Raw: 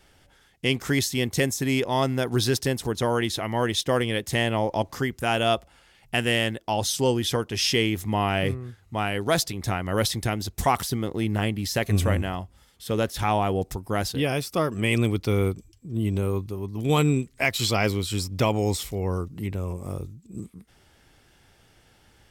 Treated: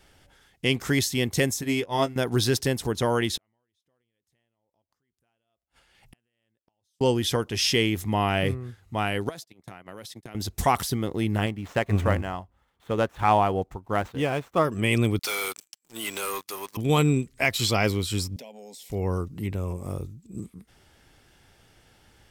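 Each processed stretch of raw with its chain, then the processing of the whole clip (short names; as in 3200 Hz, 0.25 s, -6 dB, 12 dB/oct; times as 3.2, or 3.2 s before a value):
1.61–2.16 doubler 18 ms -6.5 dB + upward expander 2.5:1, over -31 dBFS
3.37–7.01 compressor 4:1, threshold -30 dBFS + tremolo triangle 2.3 Hz, depth 60% + flipped gate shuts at -34 dBFS, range -41 dB
9.29–10.35 gate -29 dBFS, range -31 dB + HPF 140 Hz + compressor 10:1, threshold -37 dBFS
11.46–14.65 median filter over 9 samples + bell 1000 Hz +6 dB 1.7 oct + upward expander, over -38 dBFS
15.19–16.77 HPF 1400 Hz + bell 3000 Hz -3 dB 1.4 oct + sample leveller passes 5
18.36–18.9 HPF 220 Hz 24 dB/oct + fixed phaser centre 330 Hz, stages 6 + compressor 4:1, threshold -44 dBFS
whole clip: dry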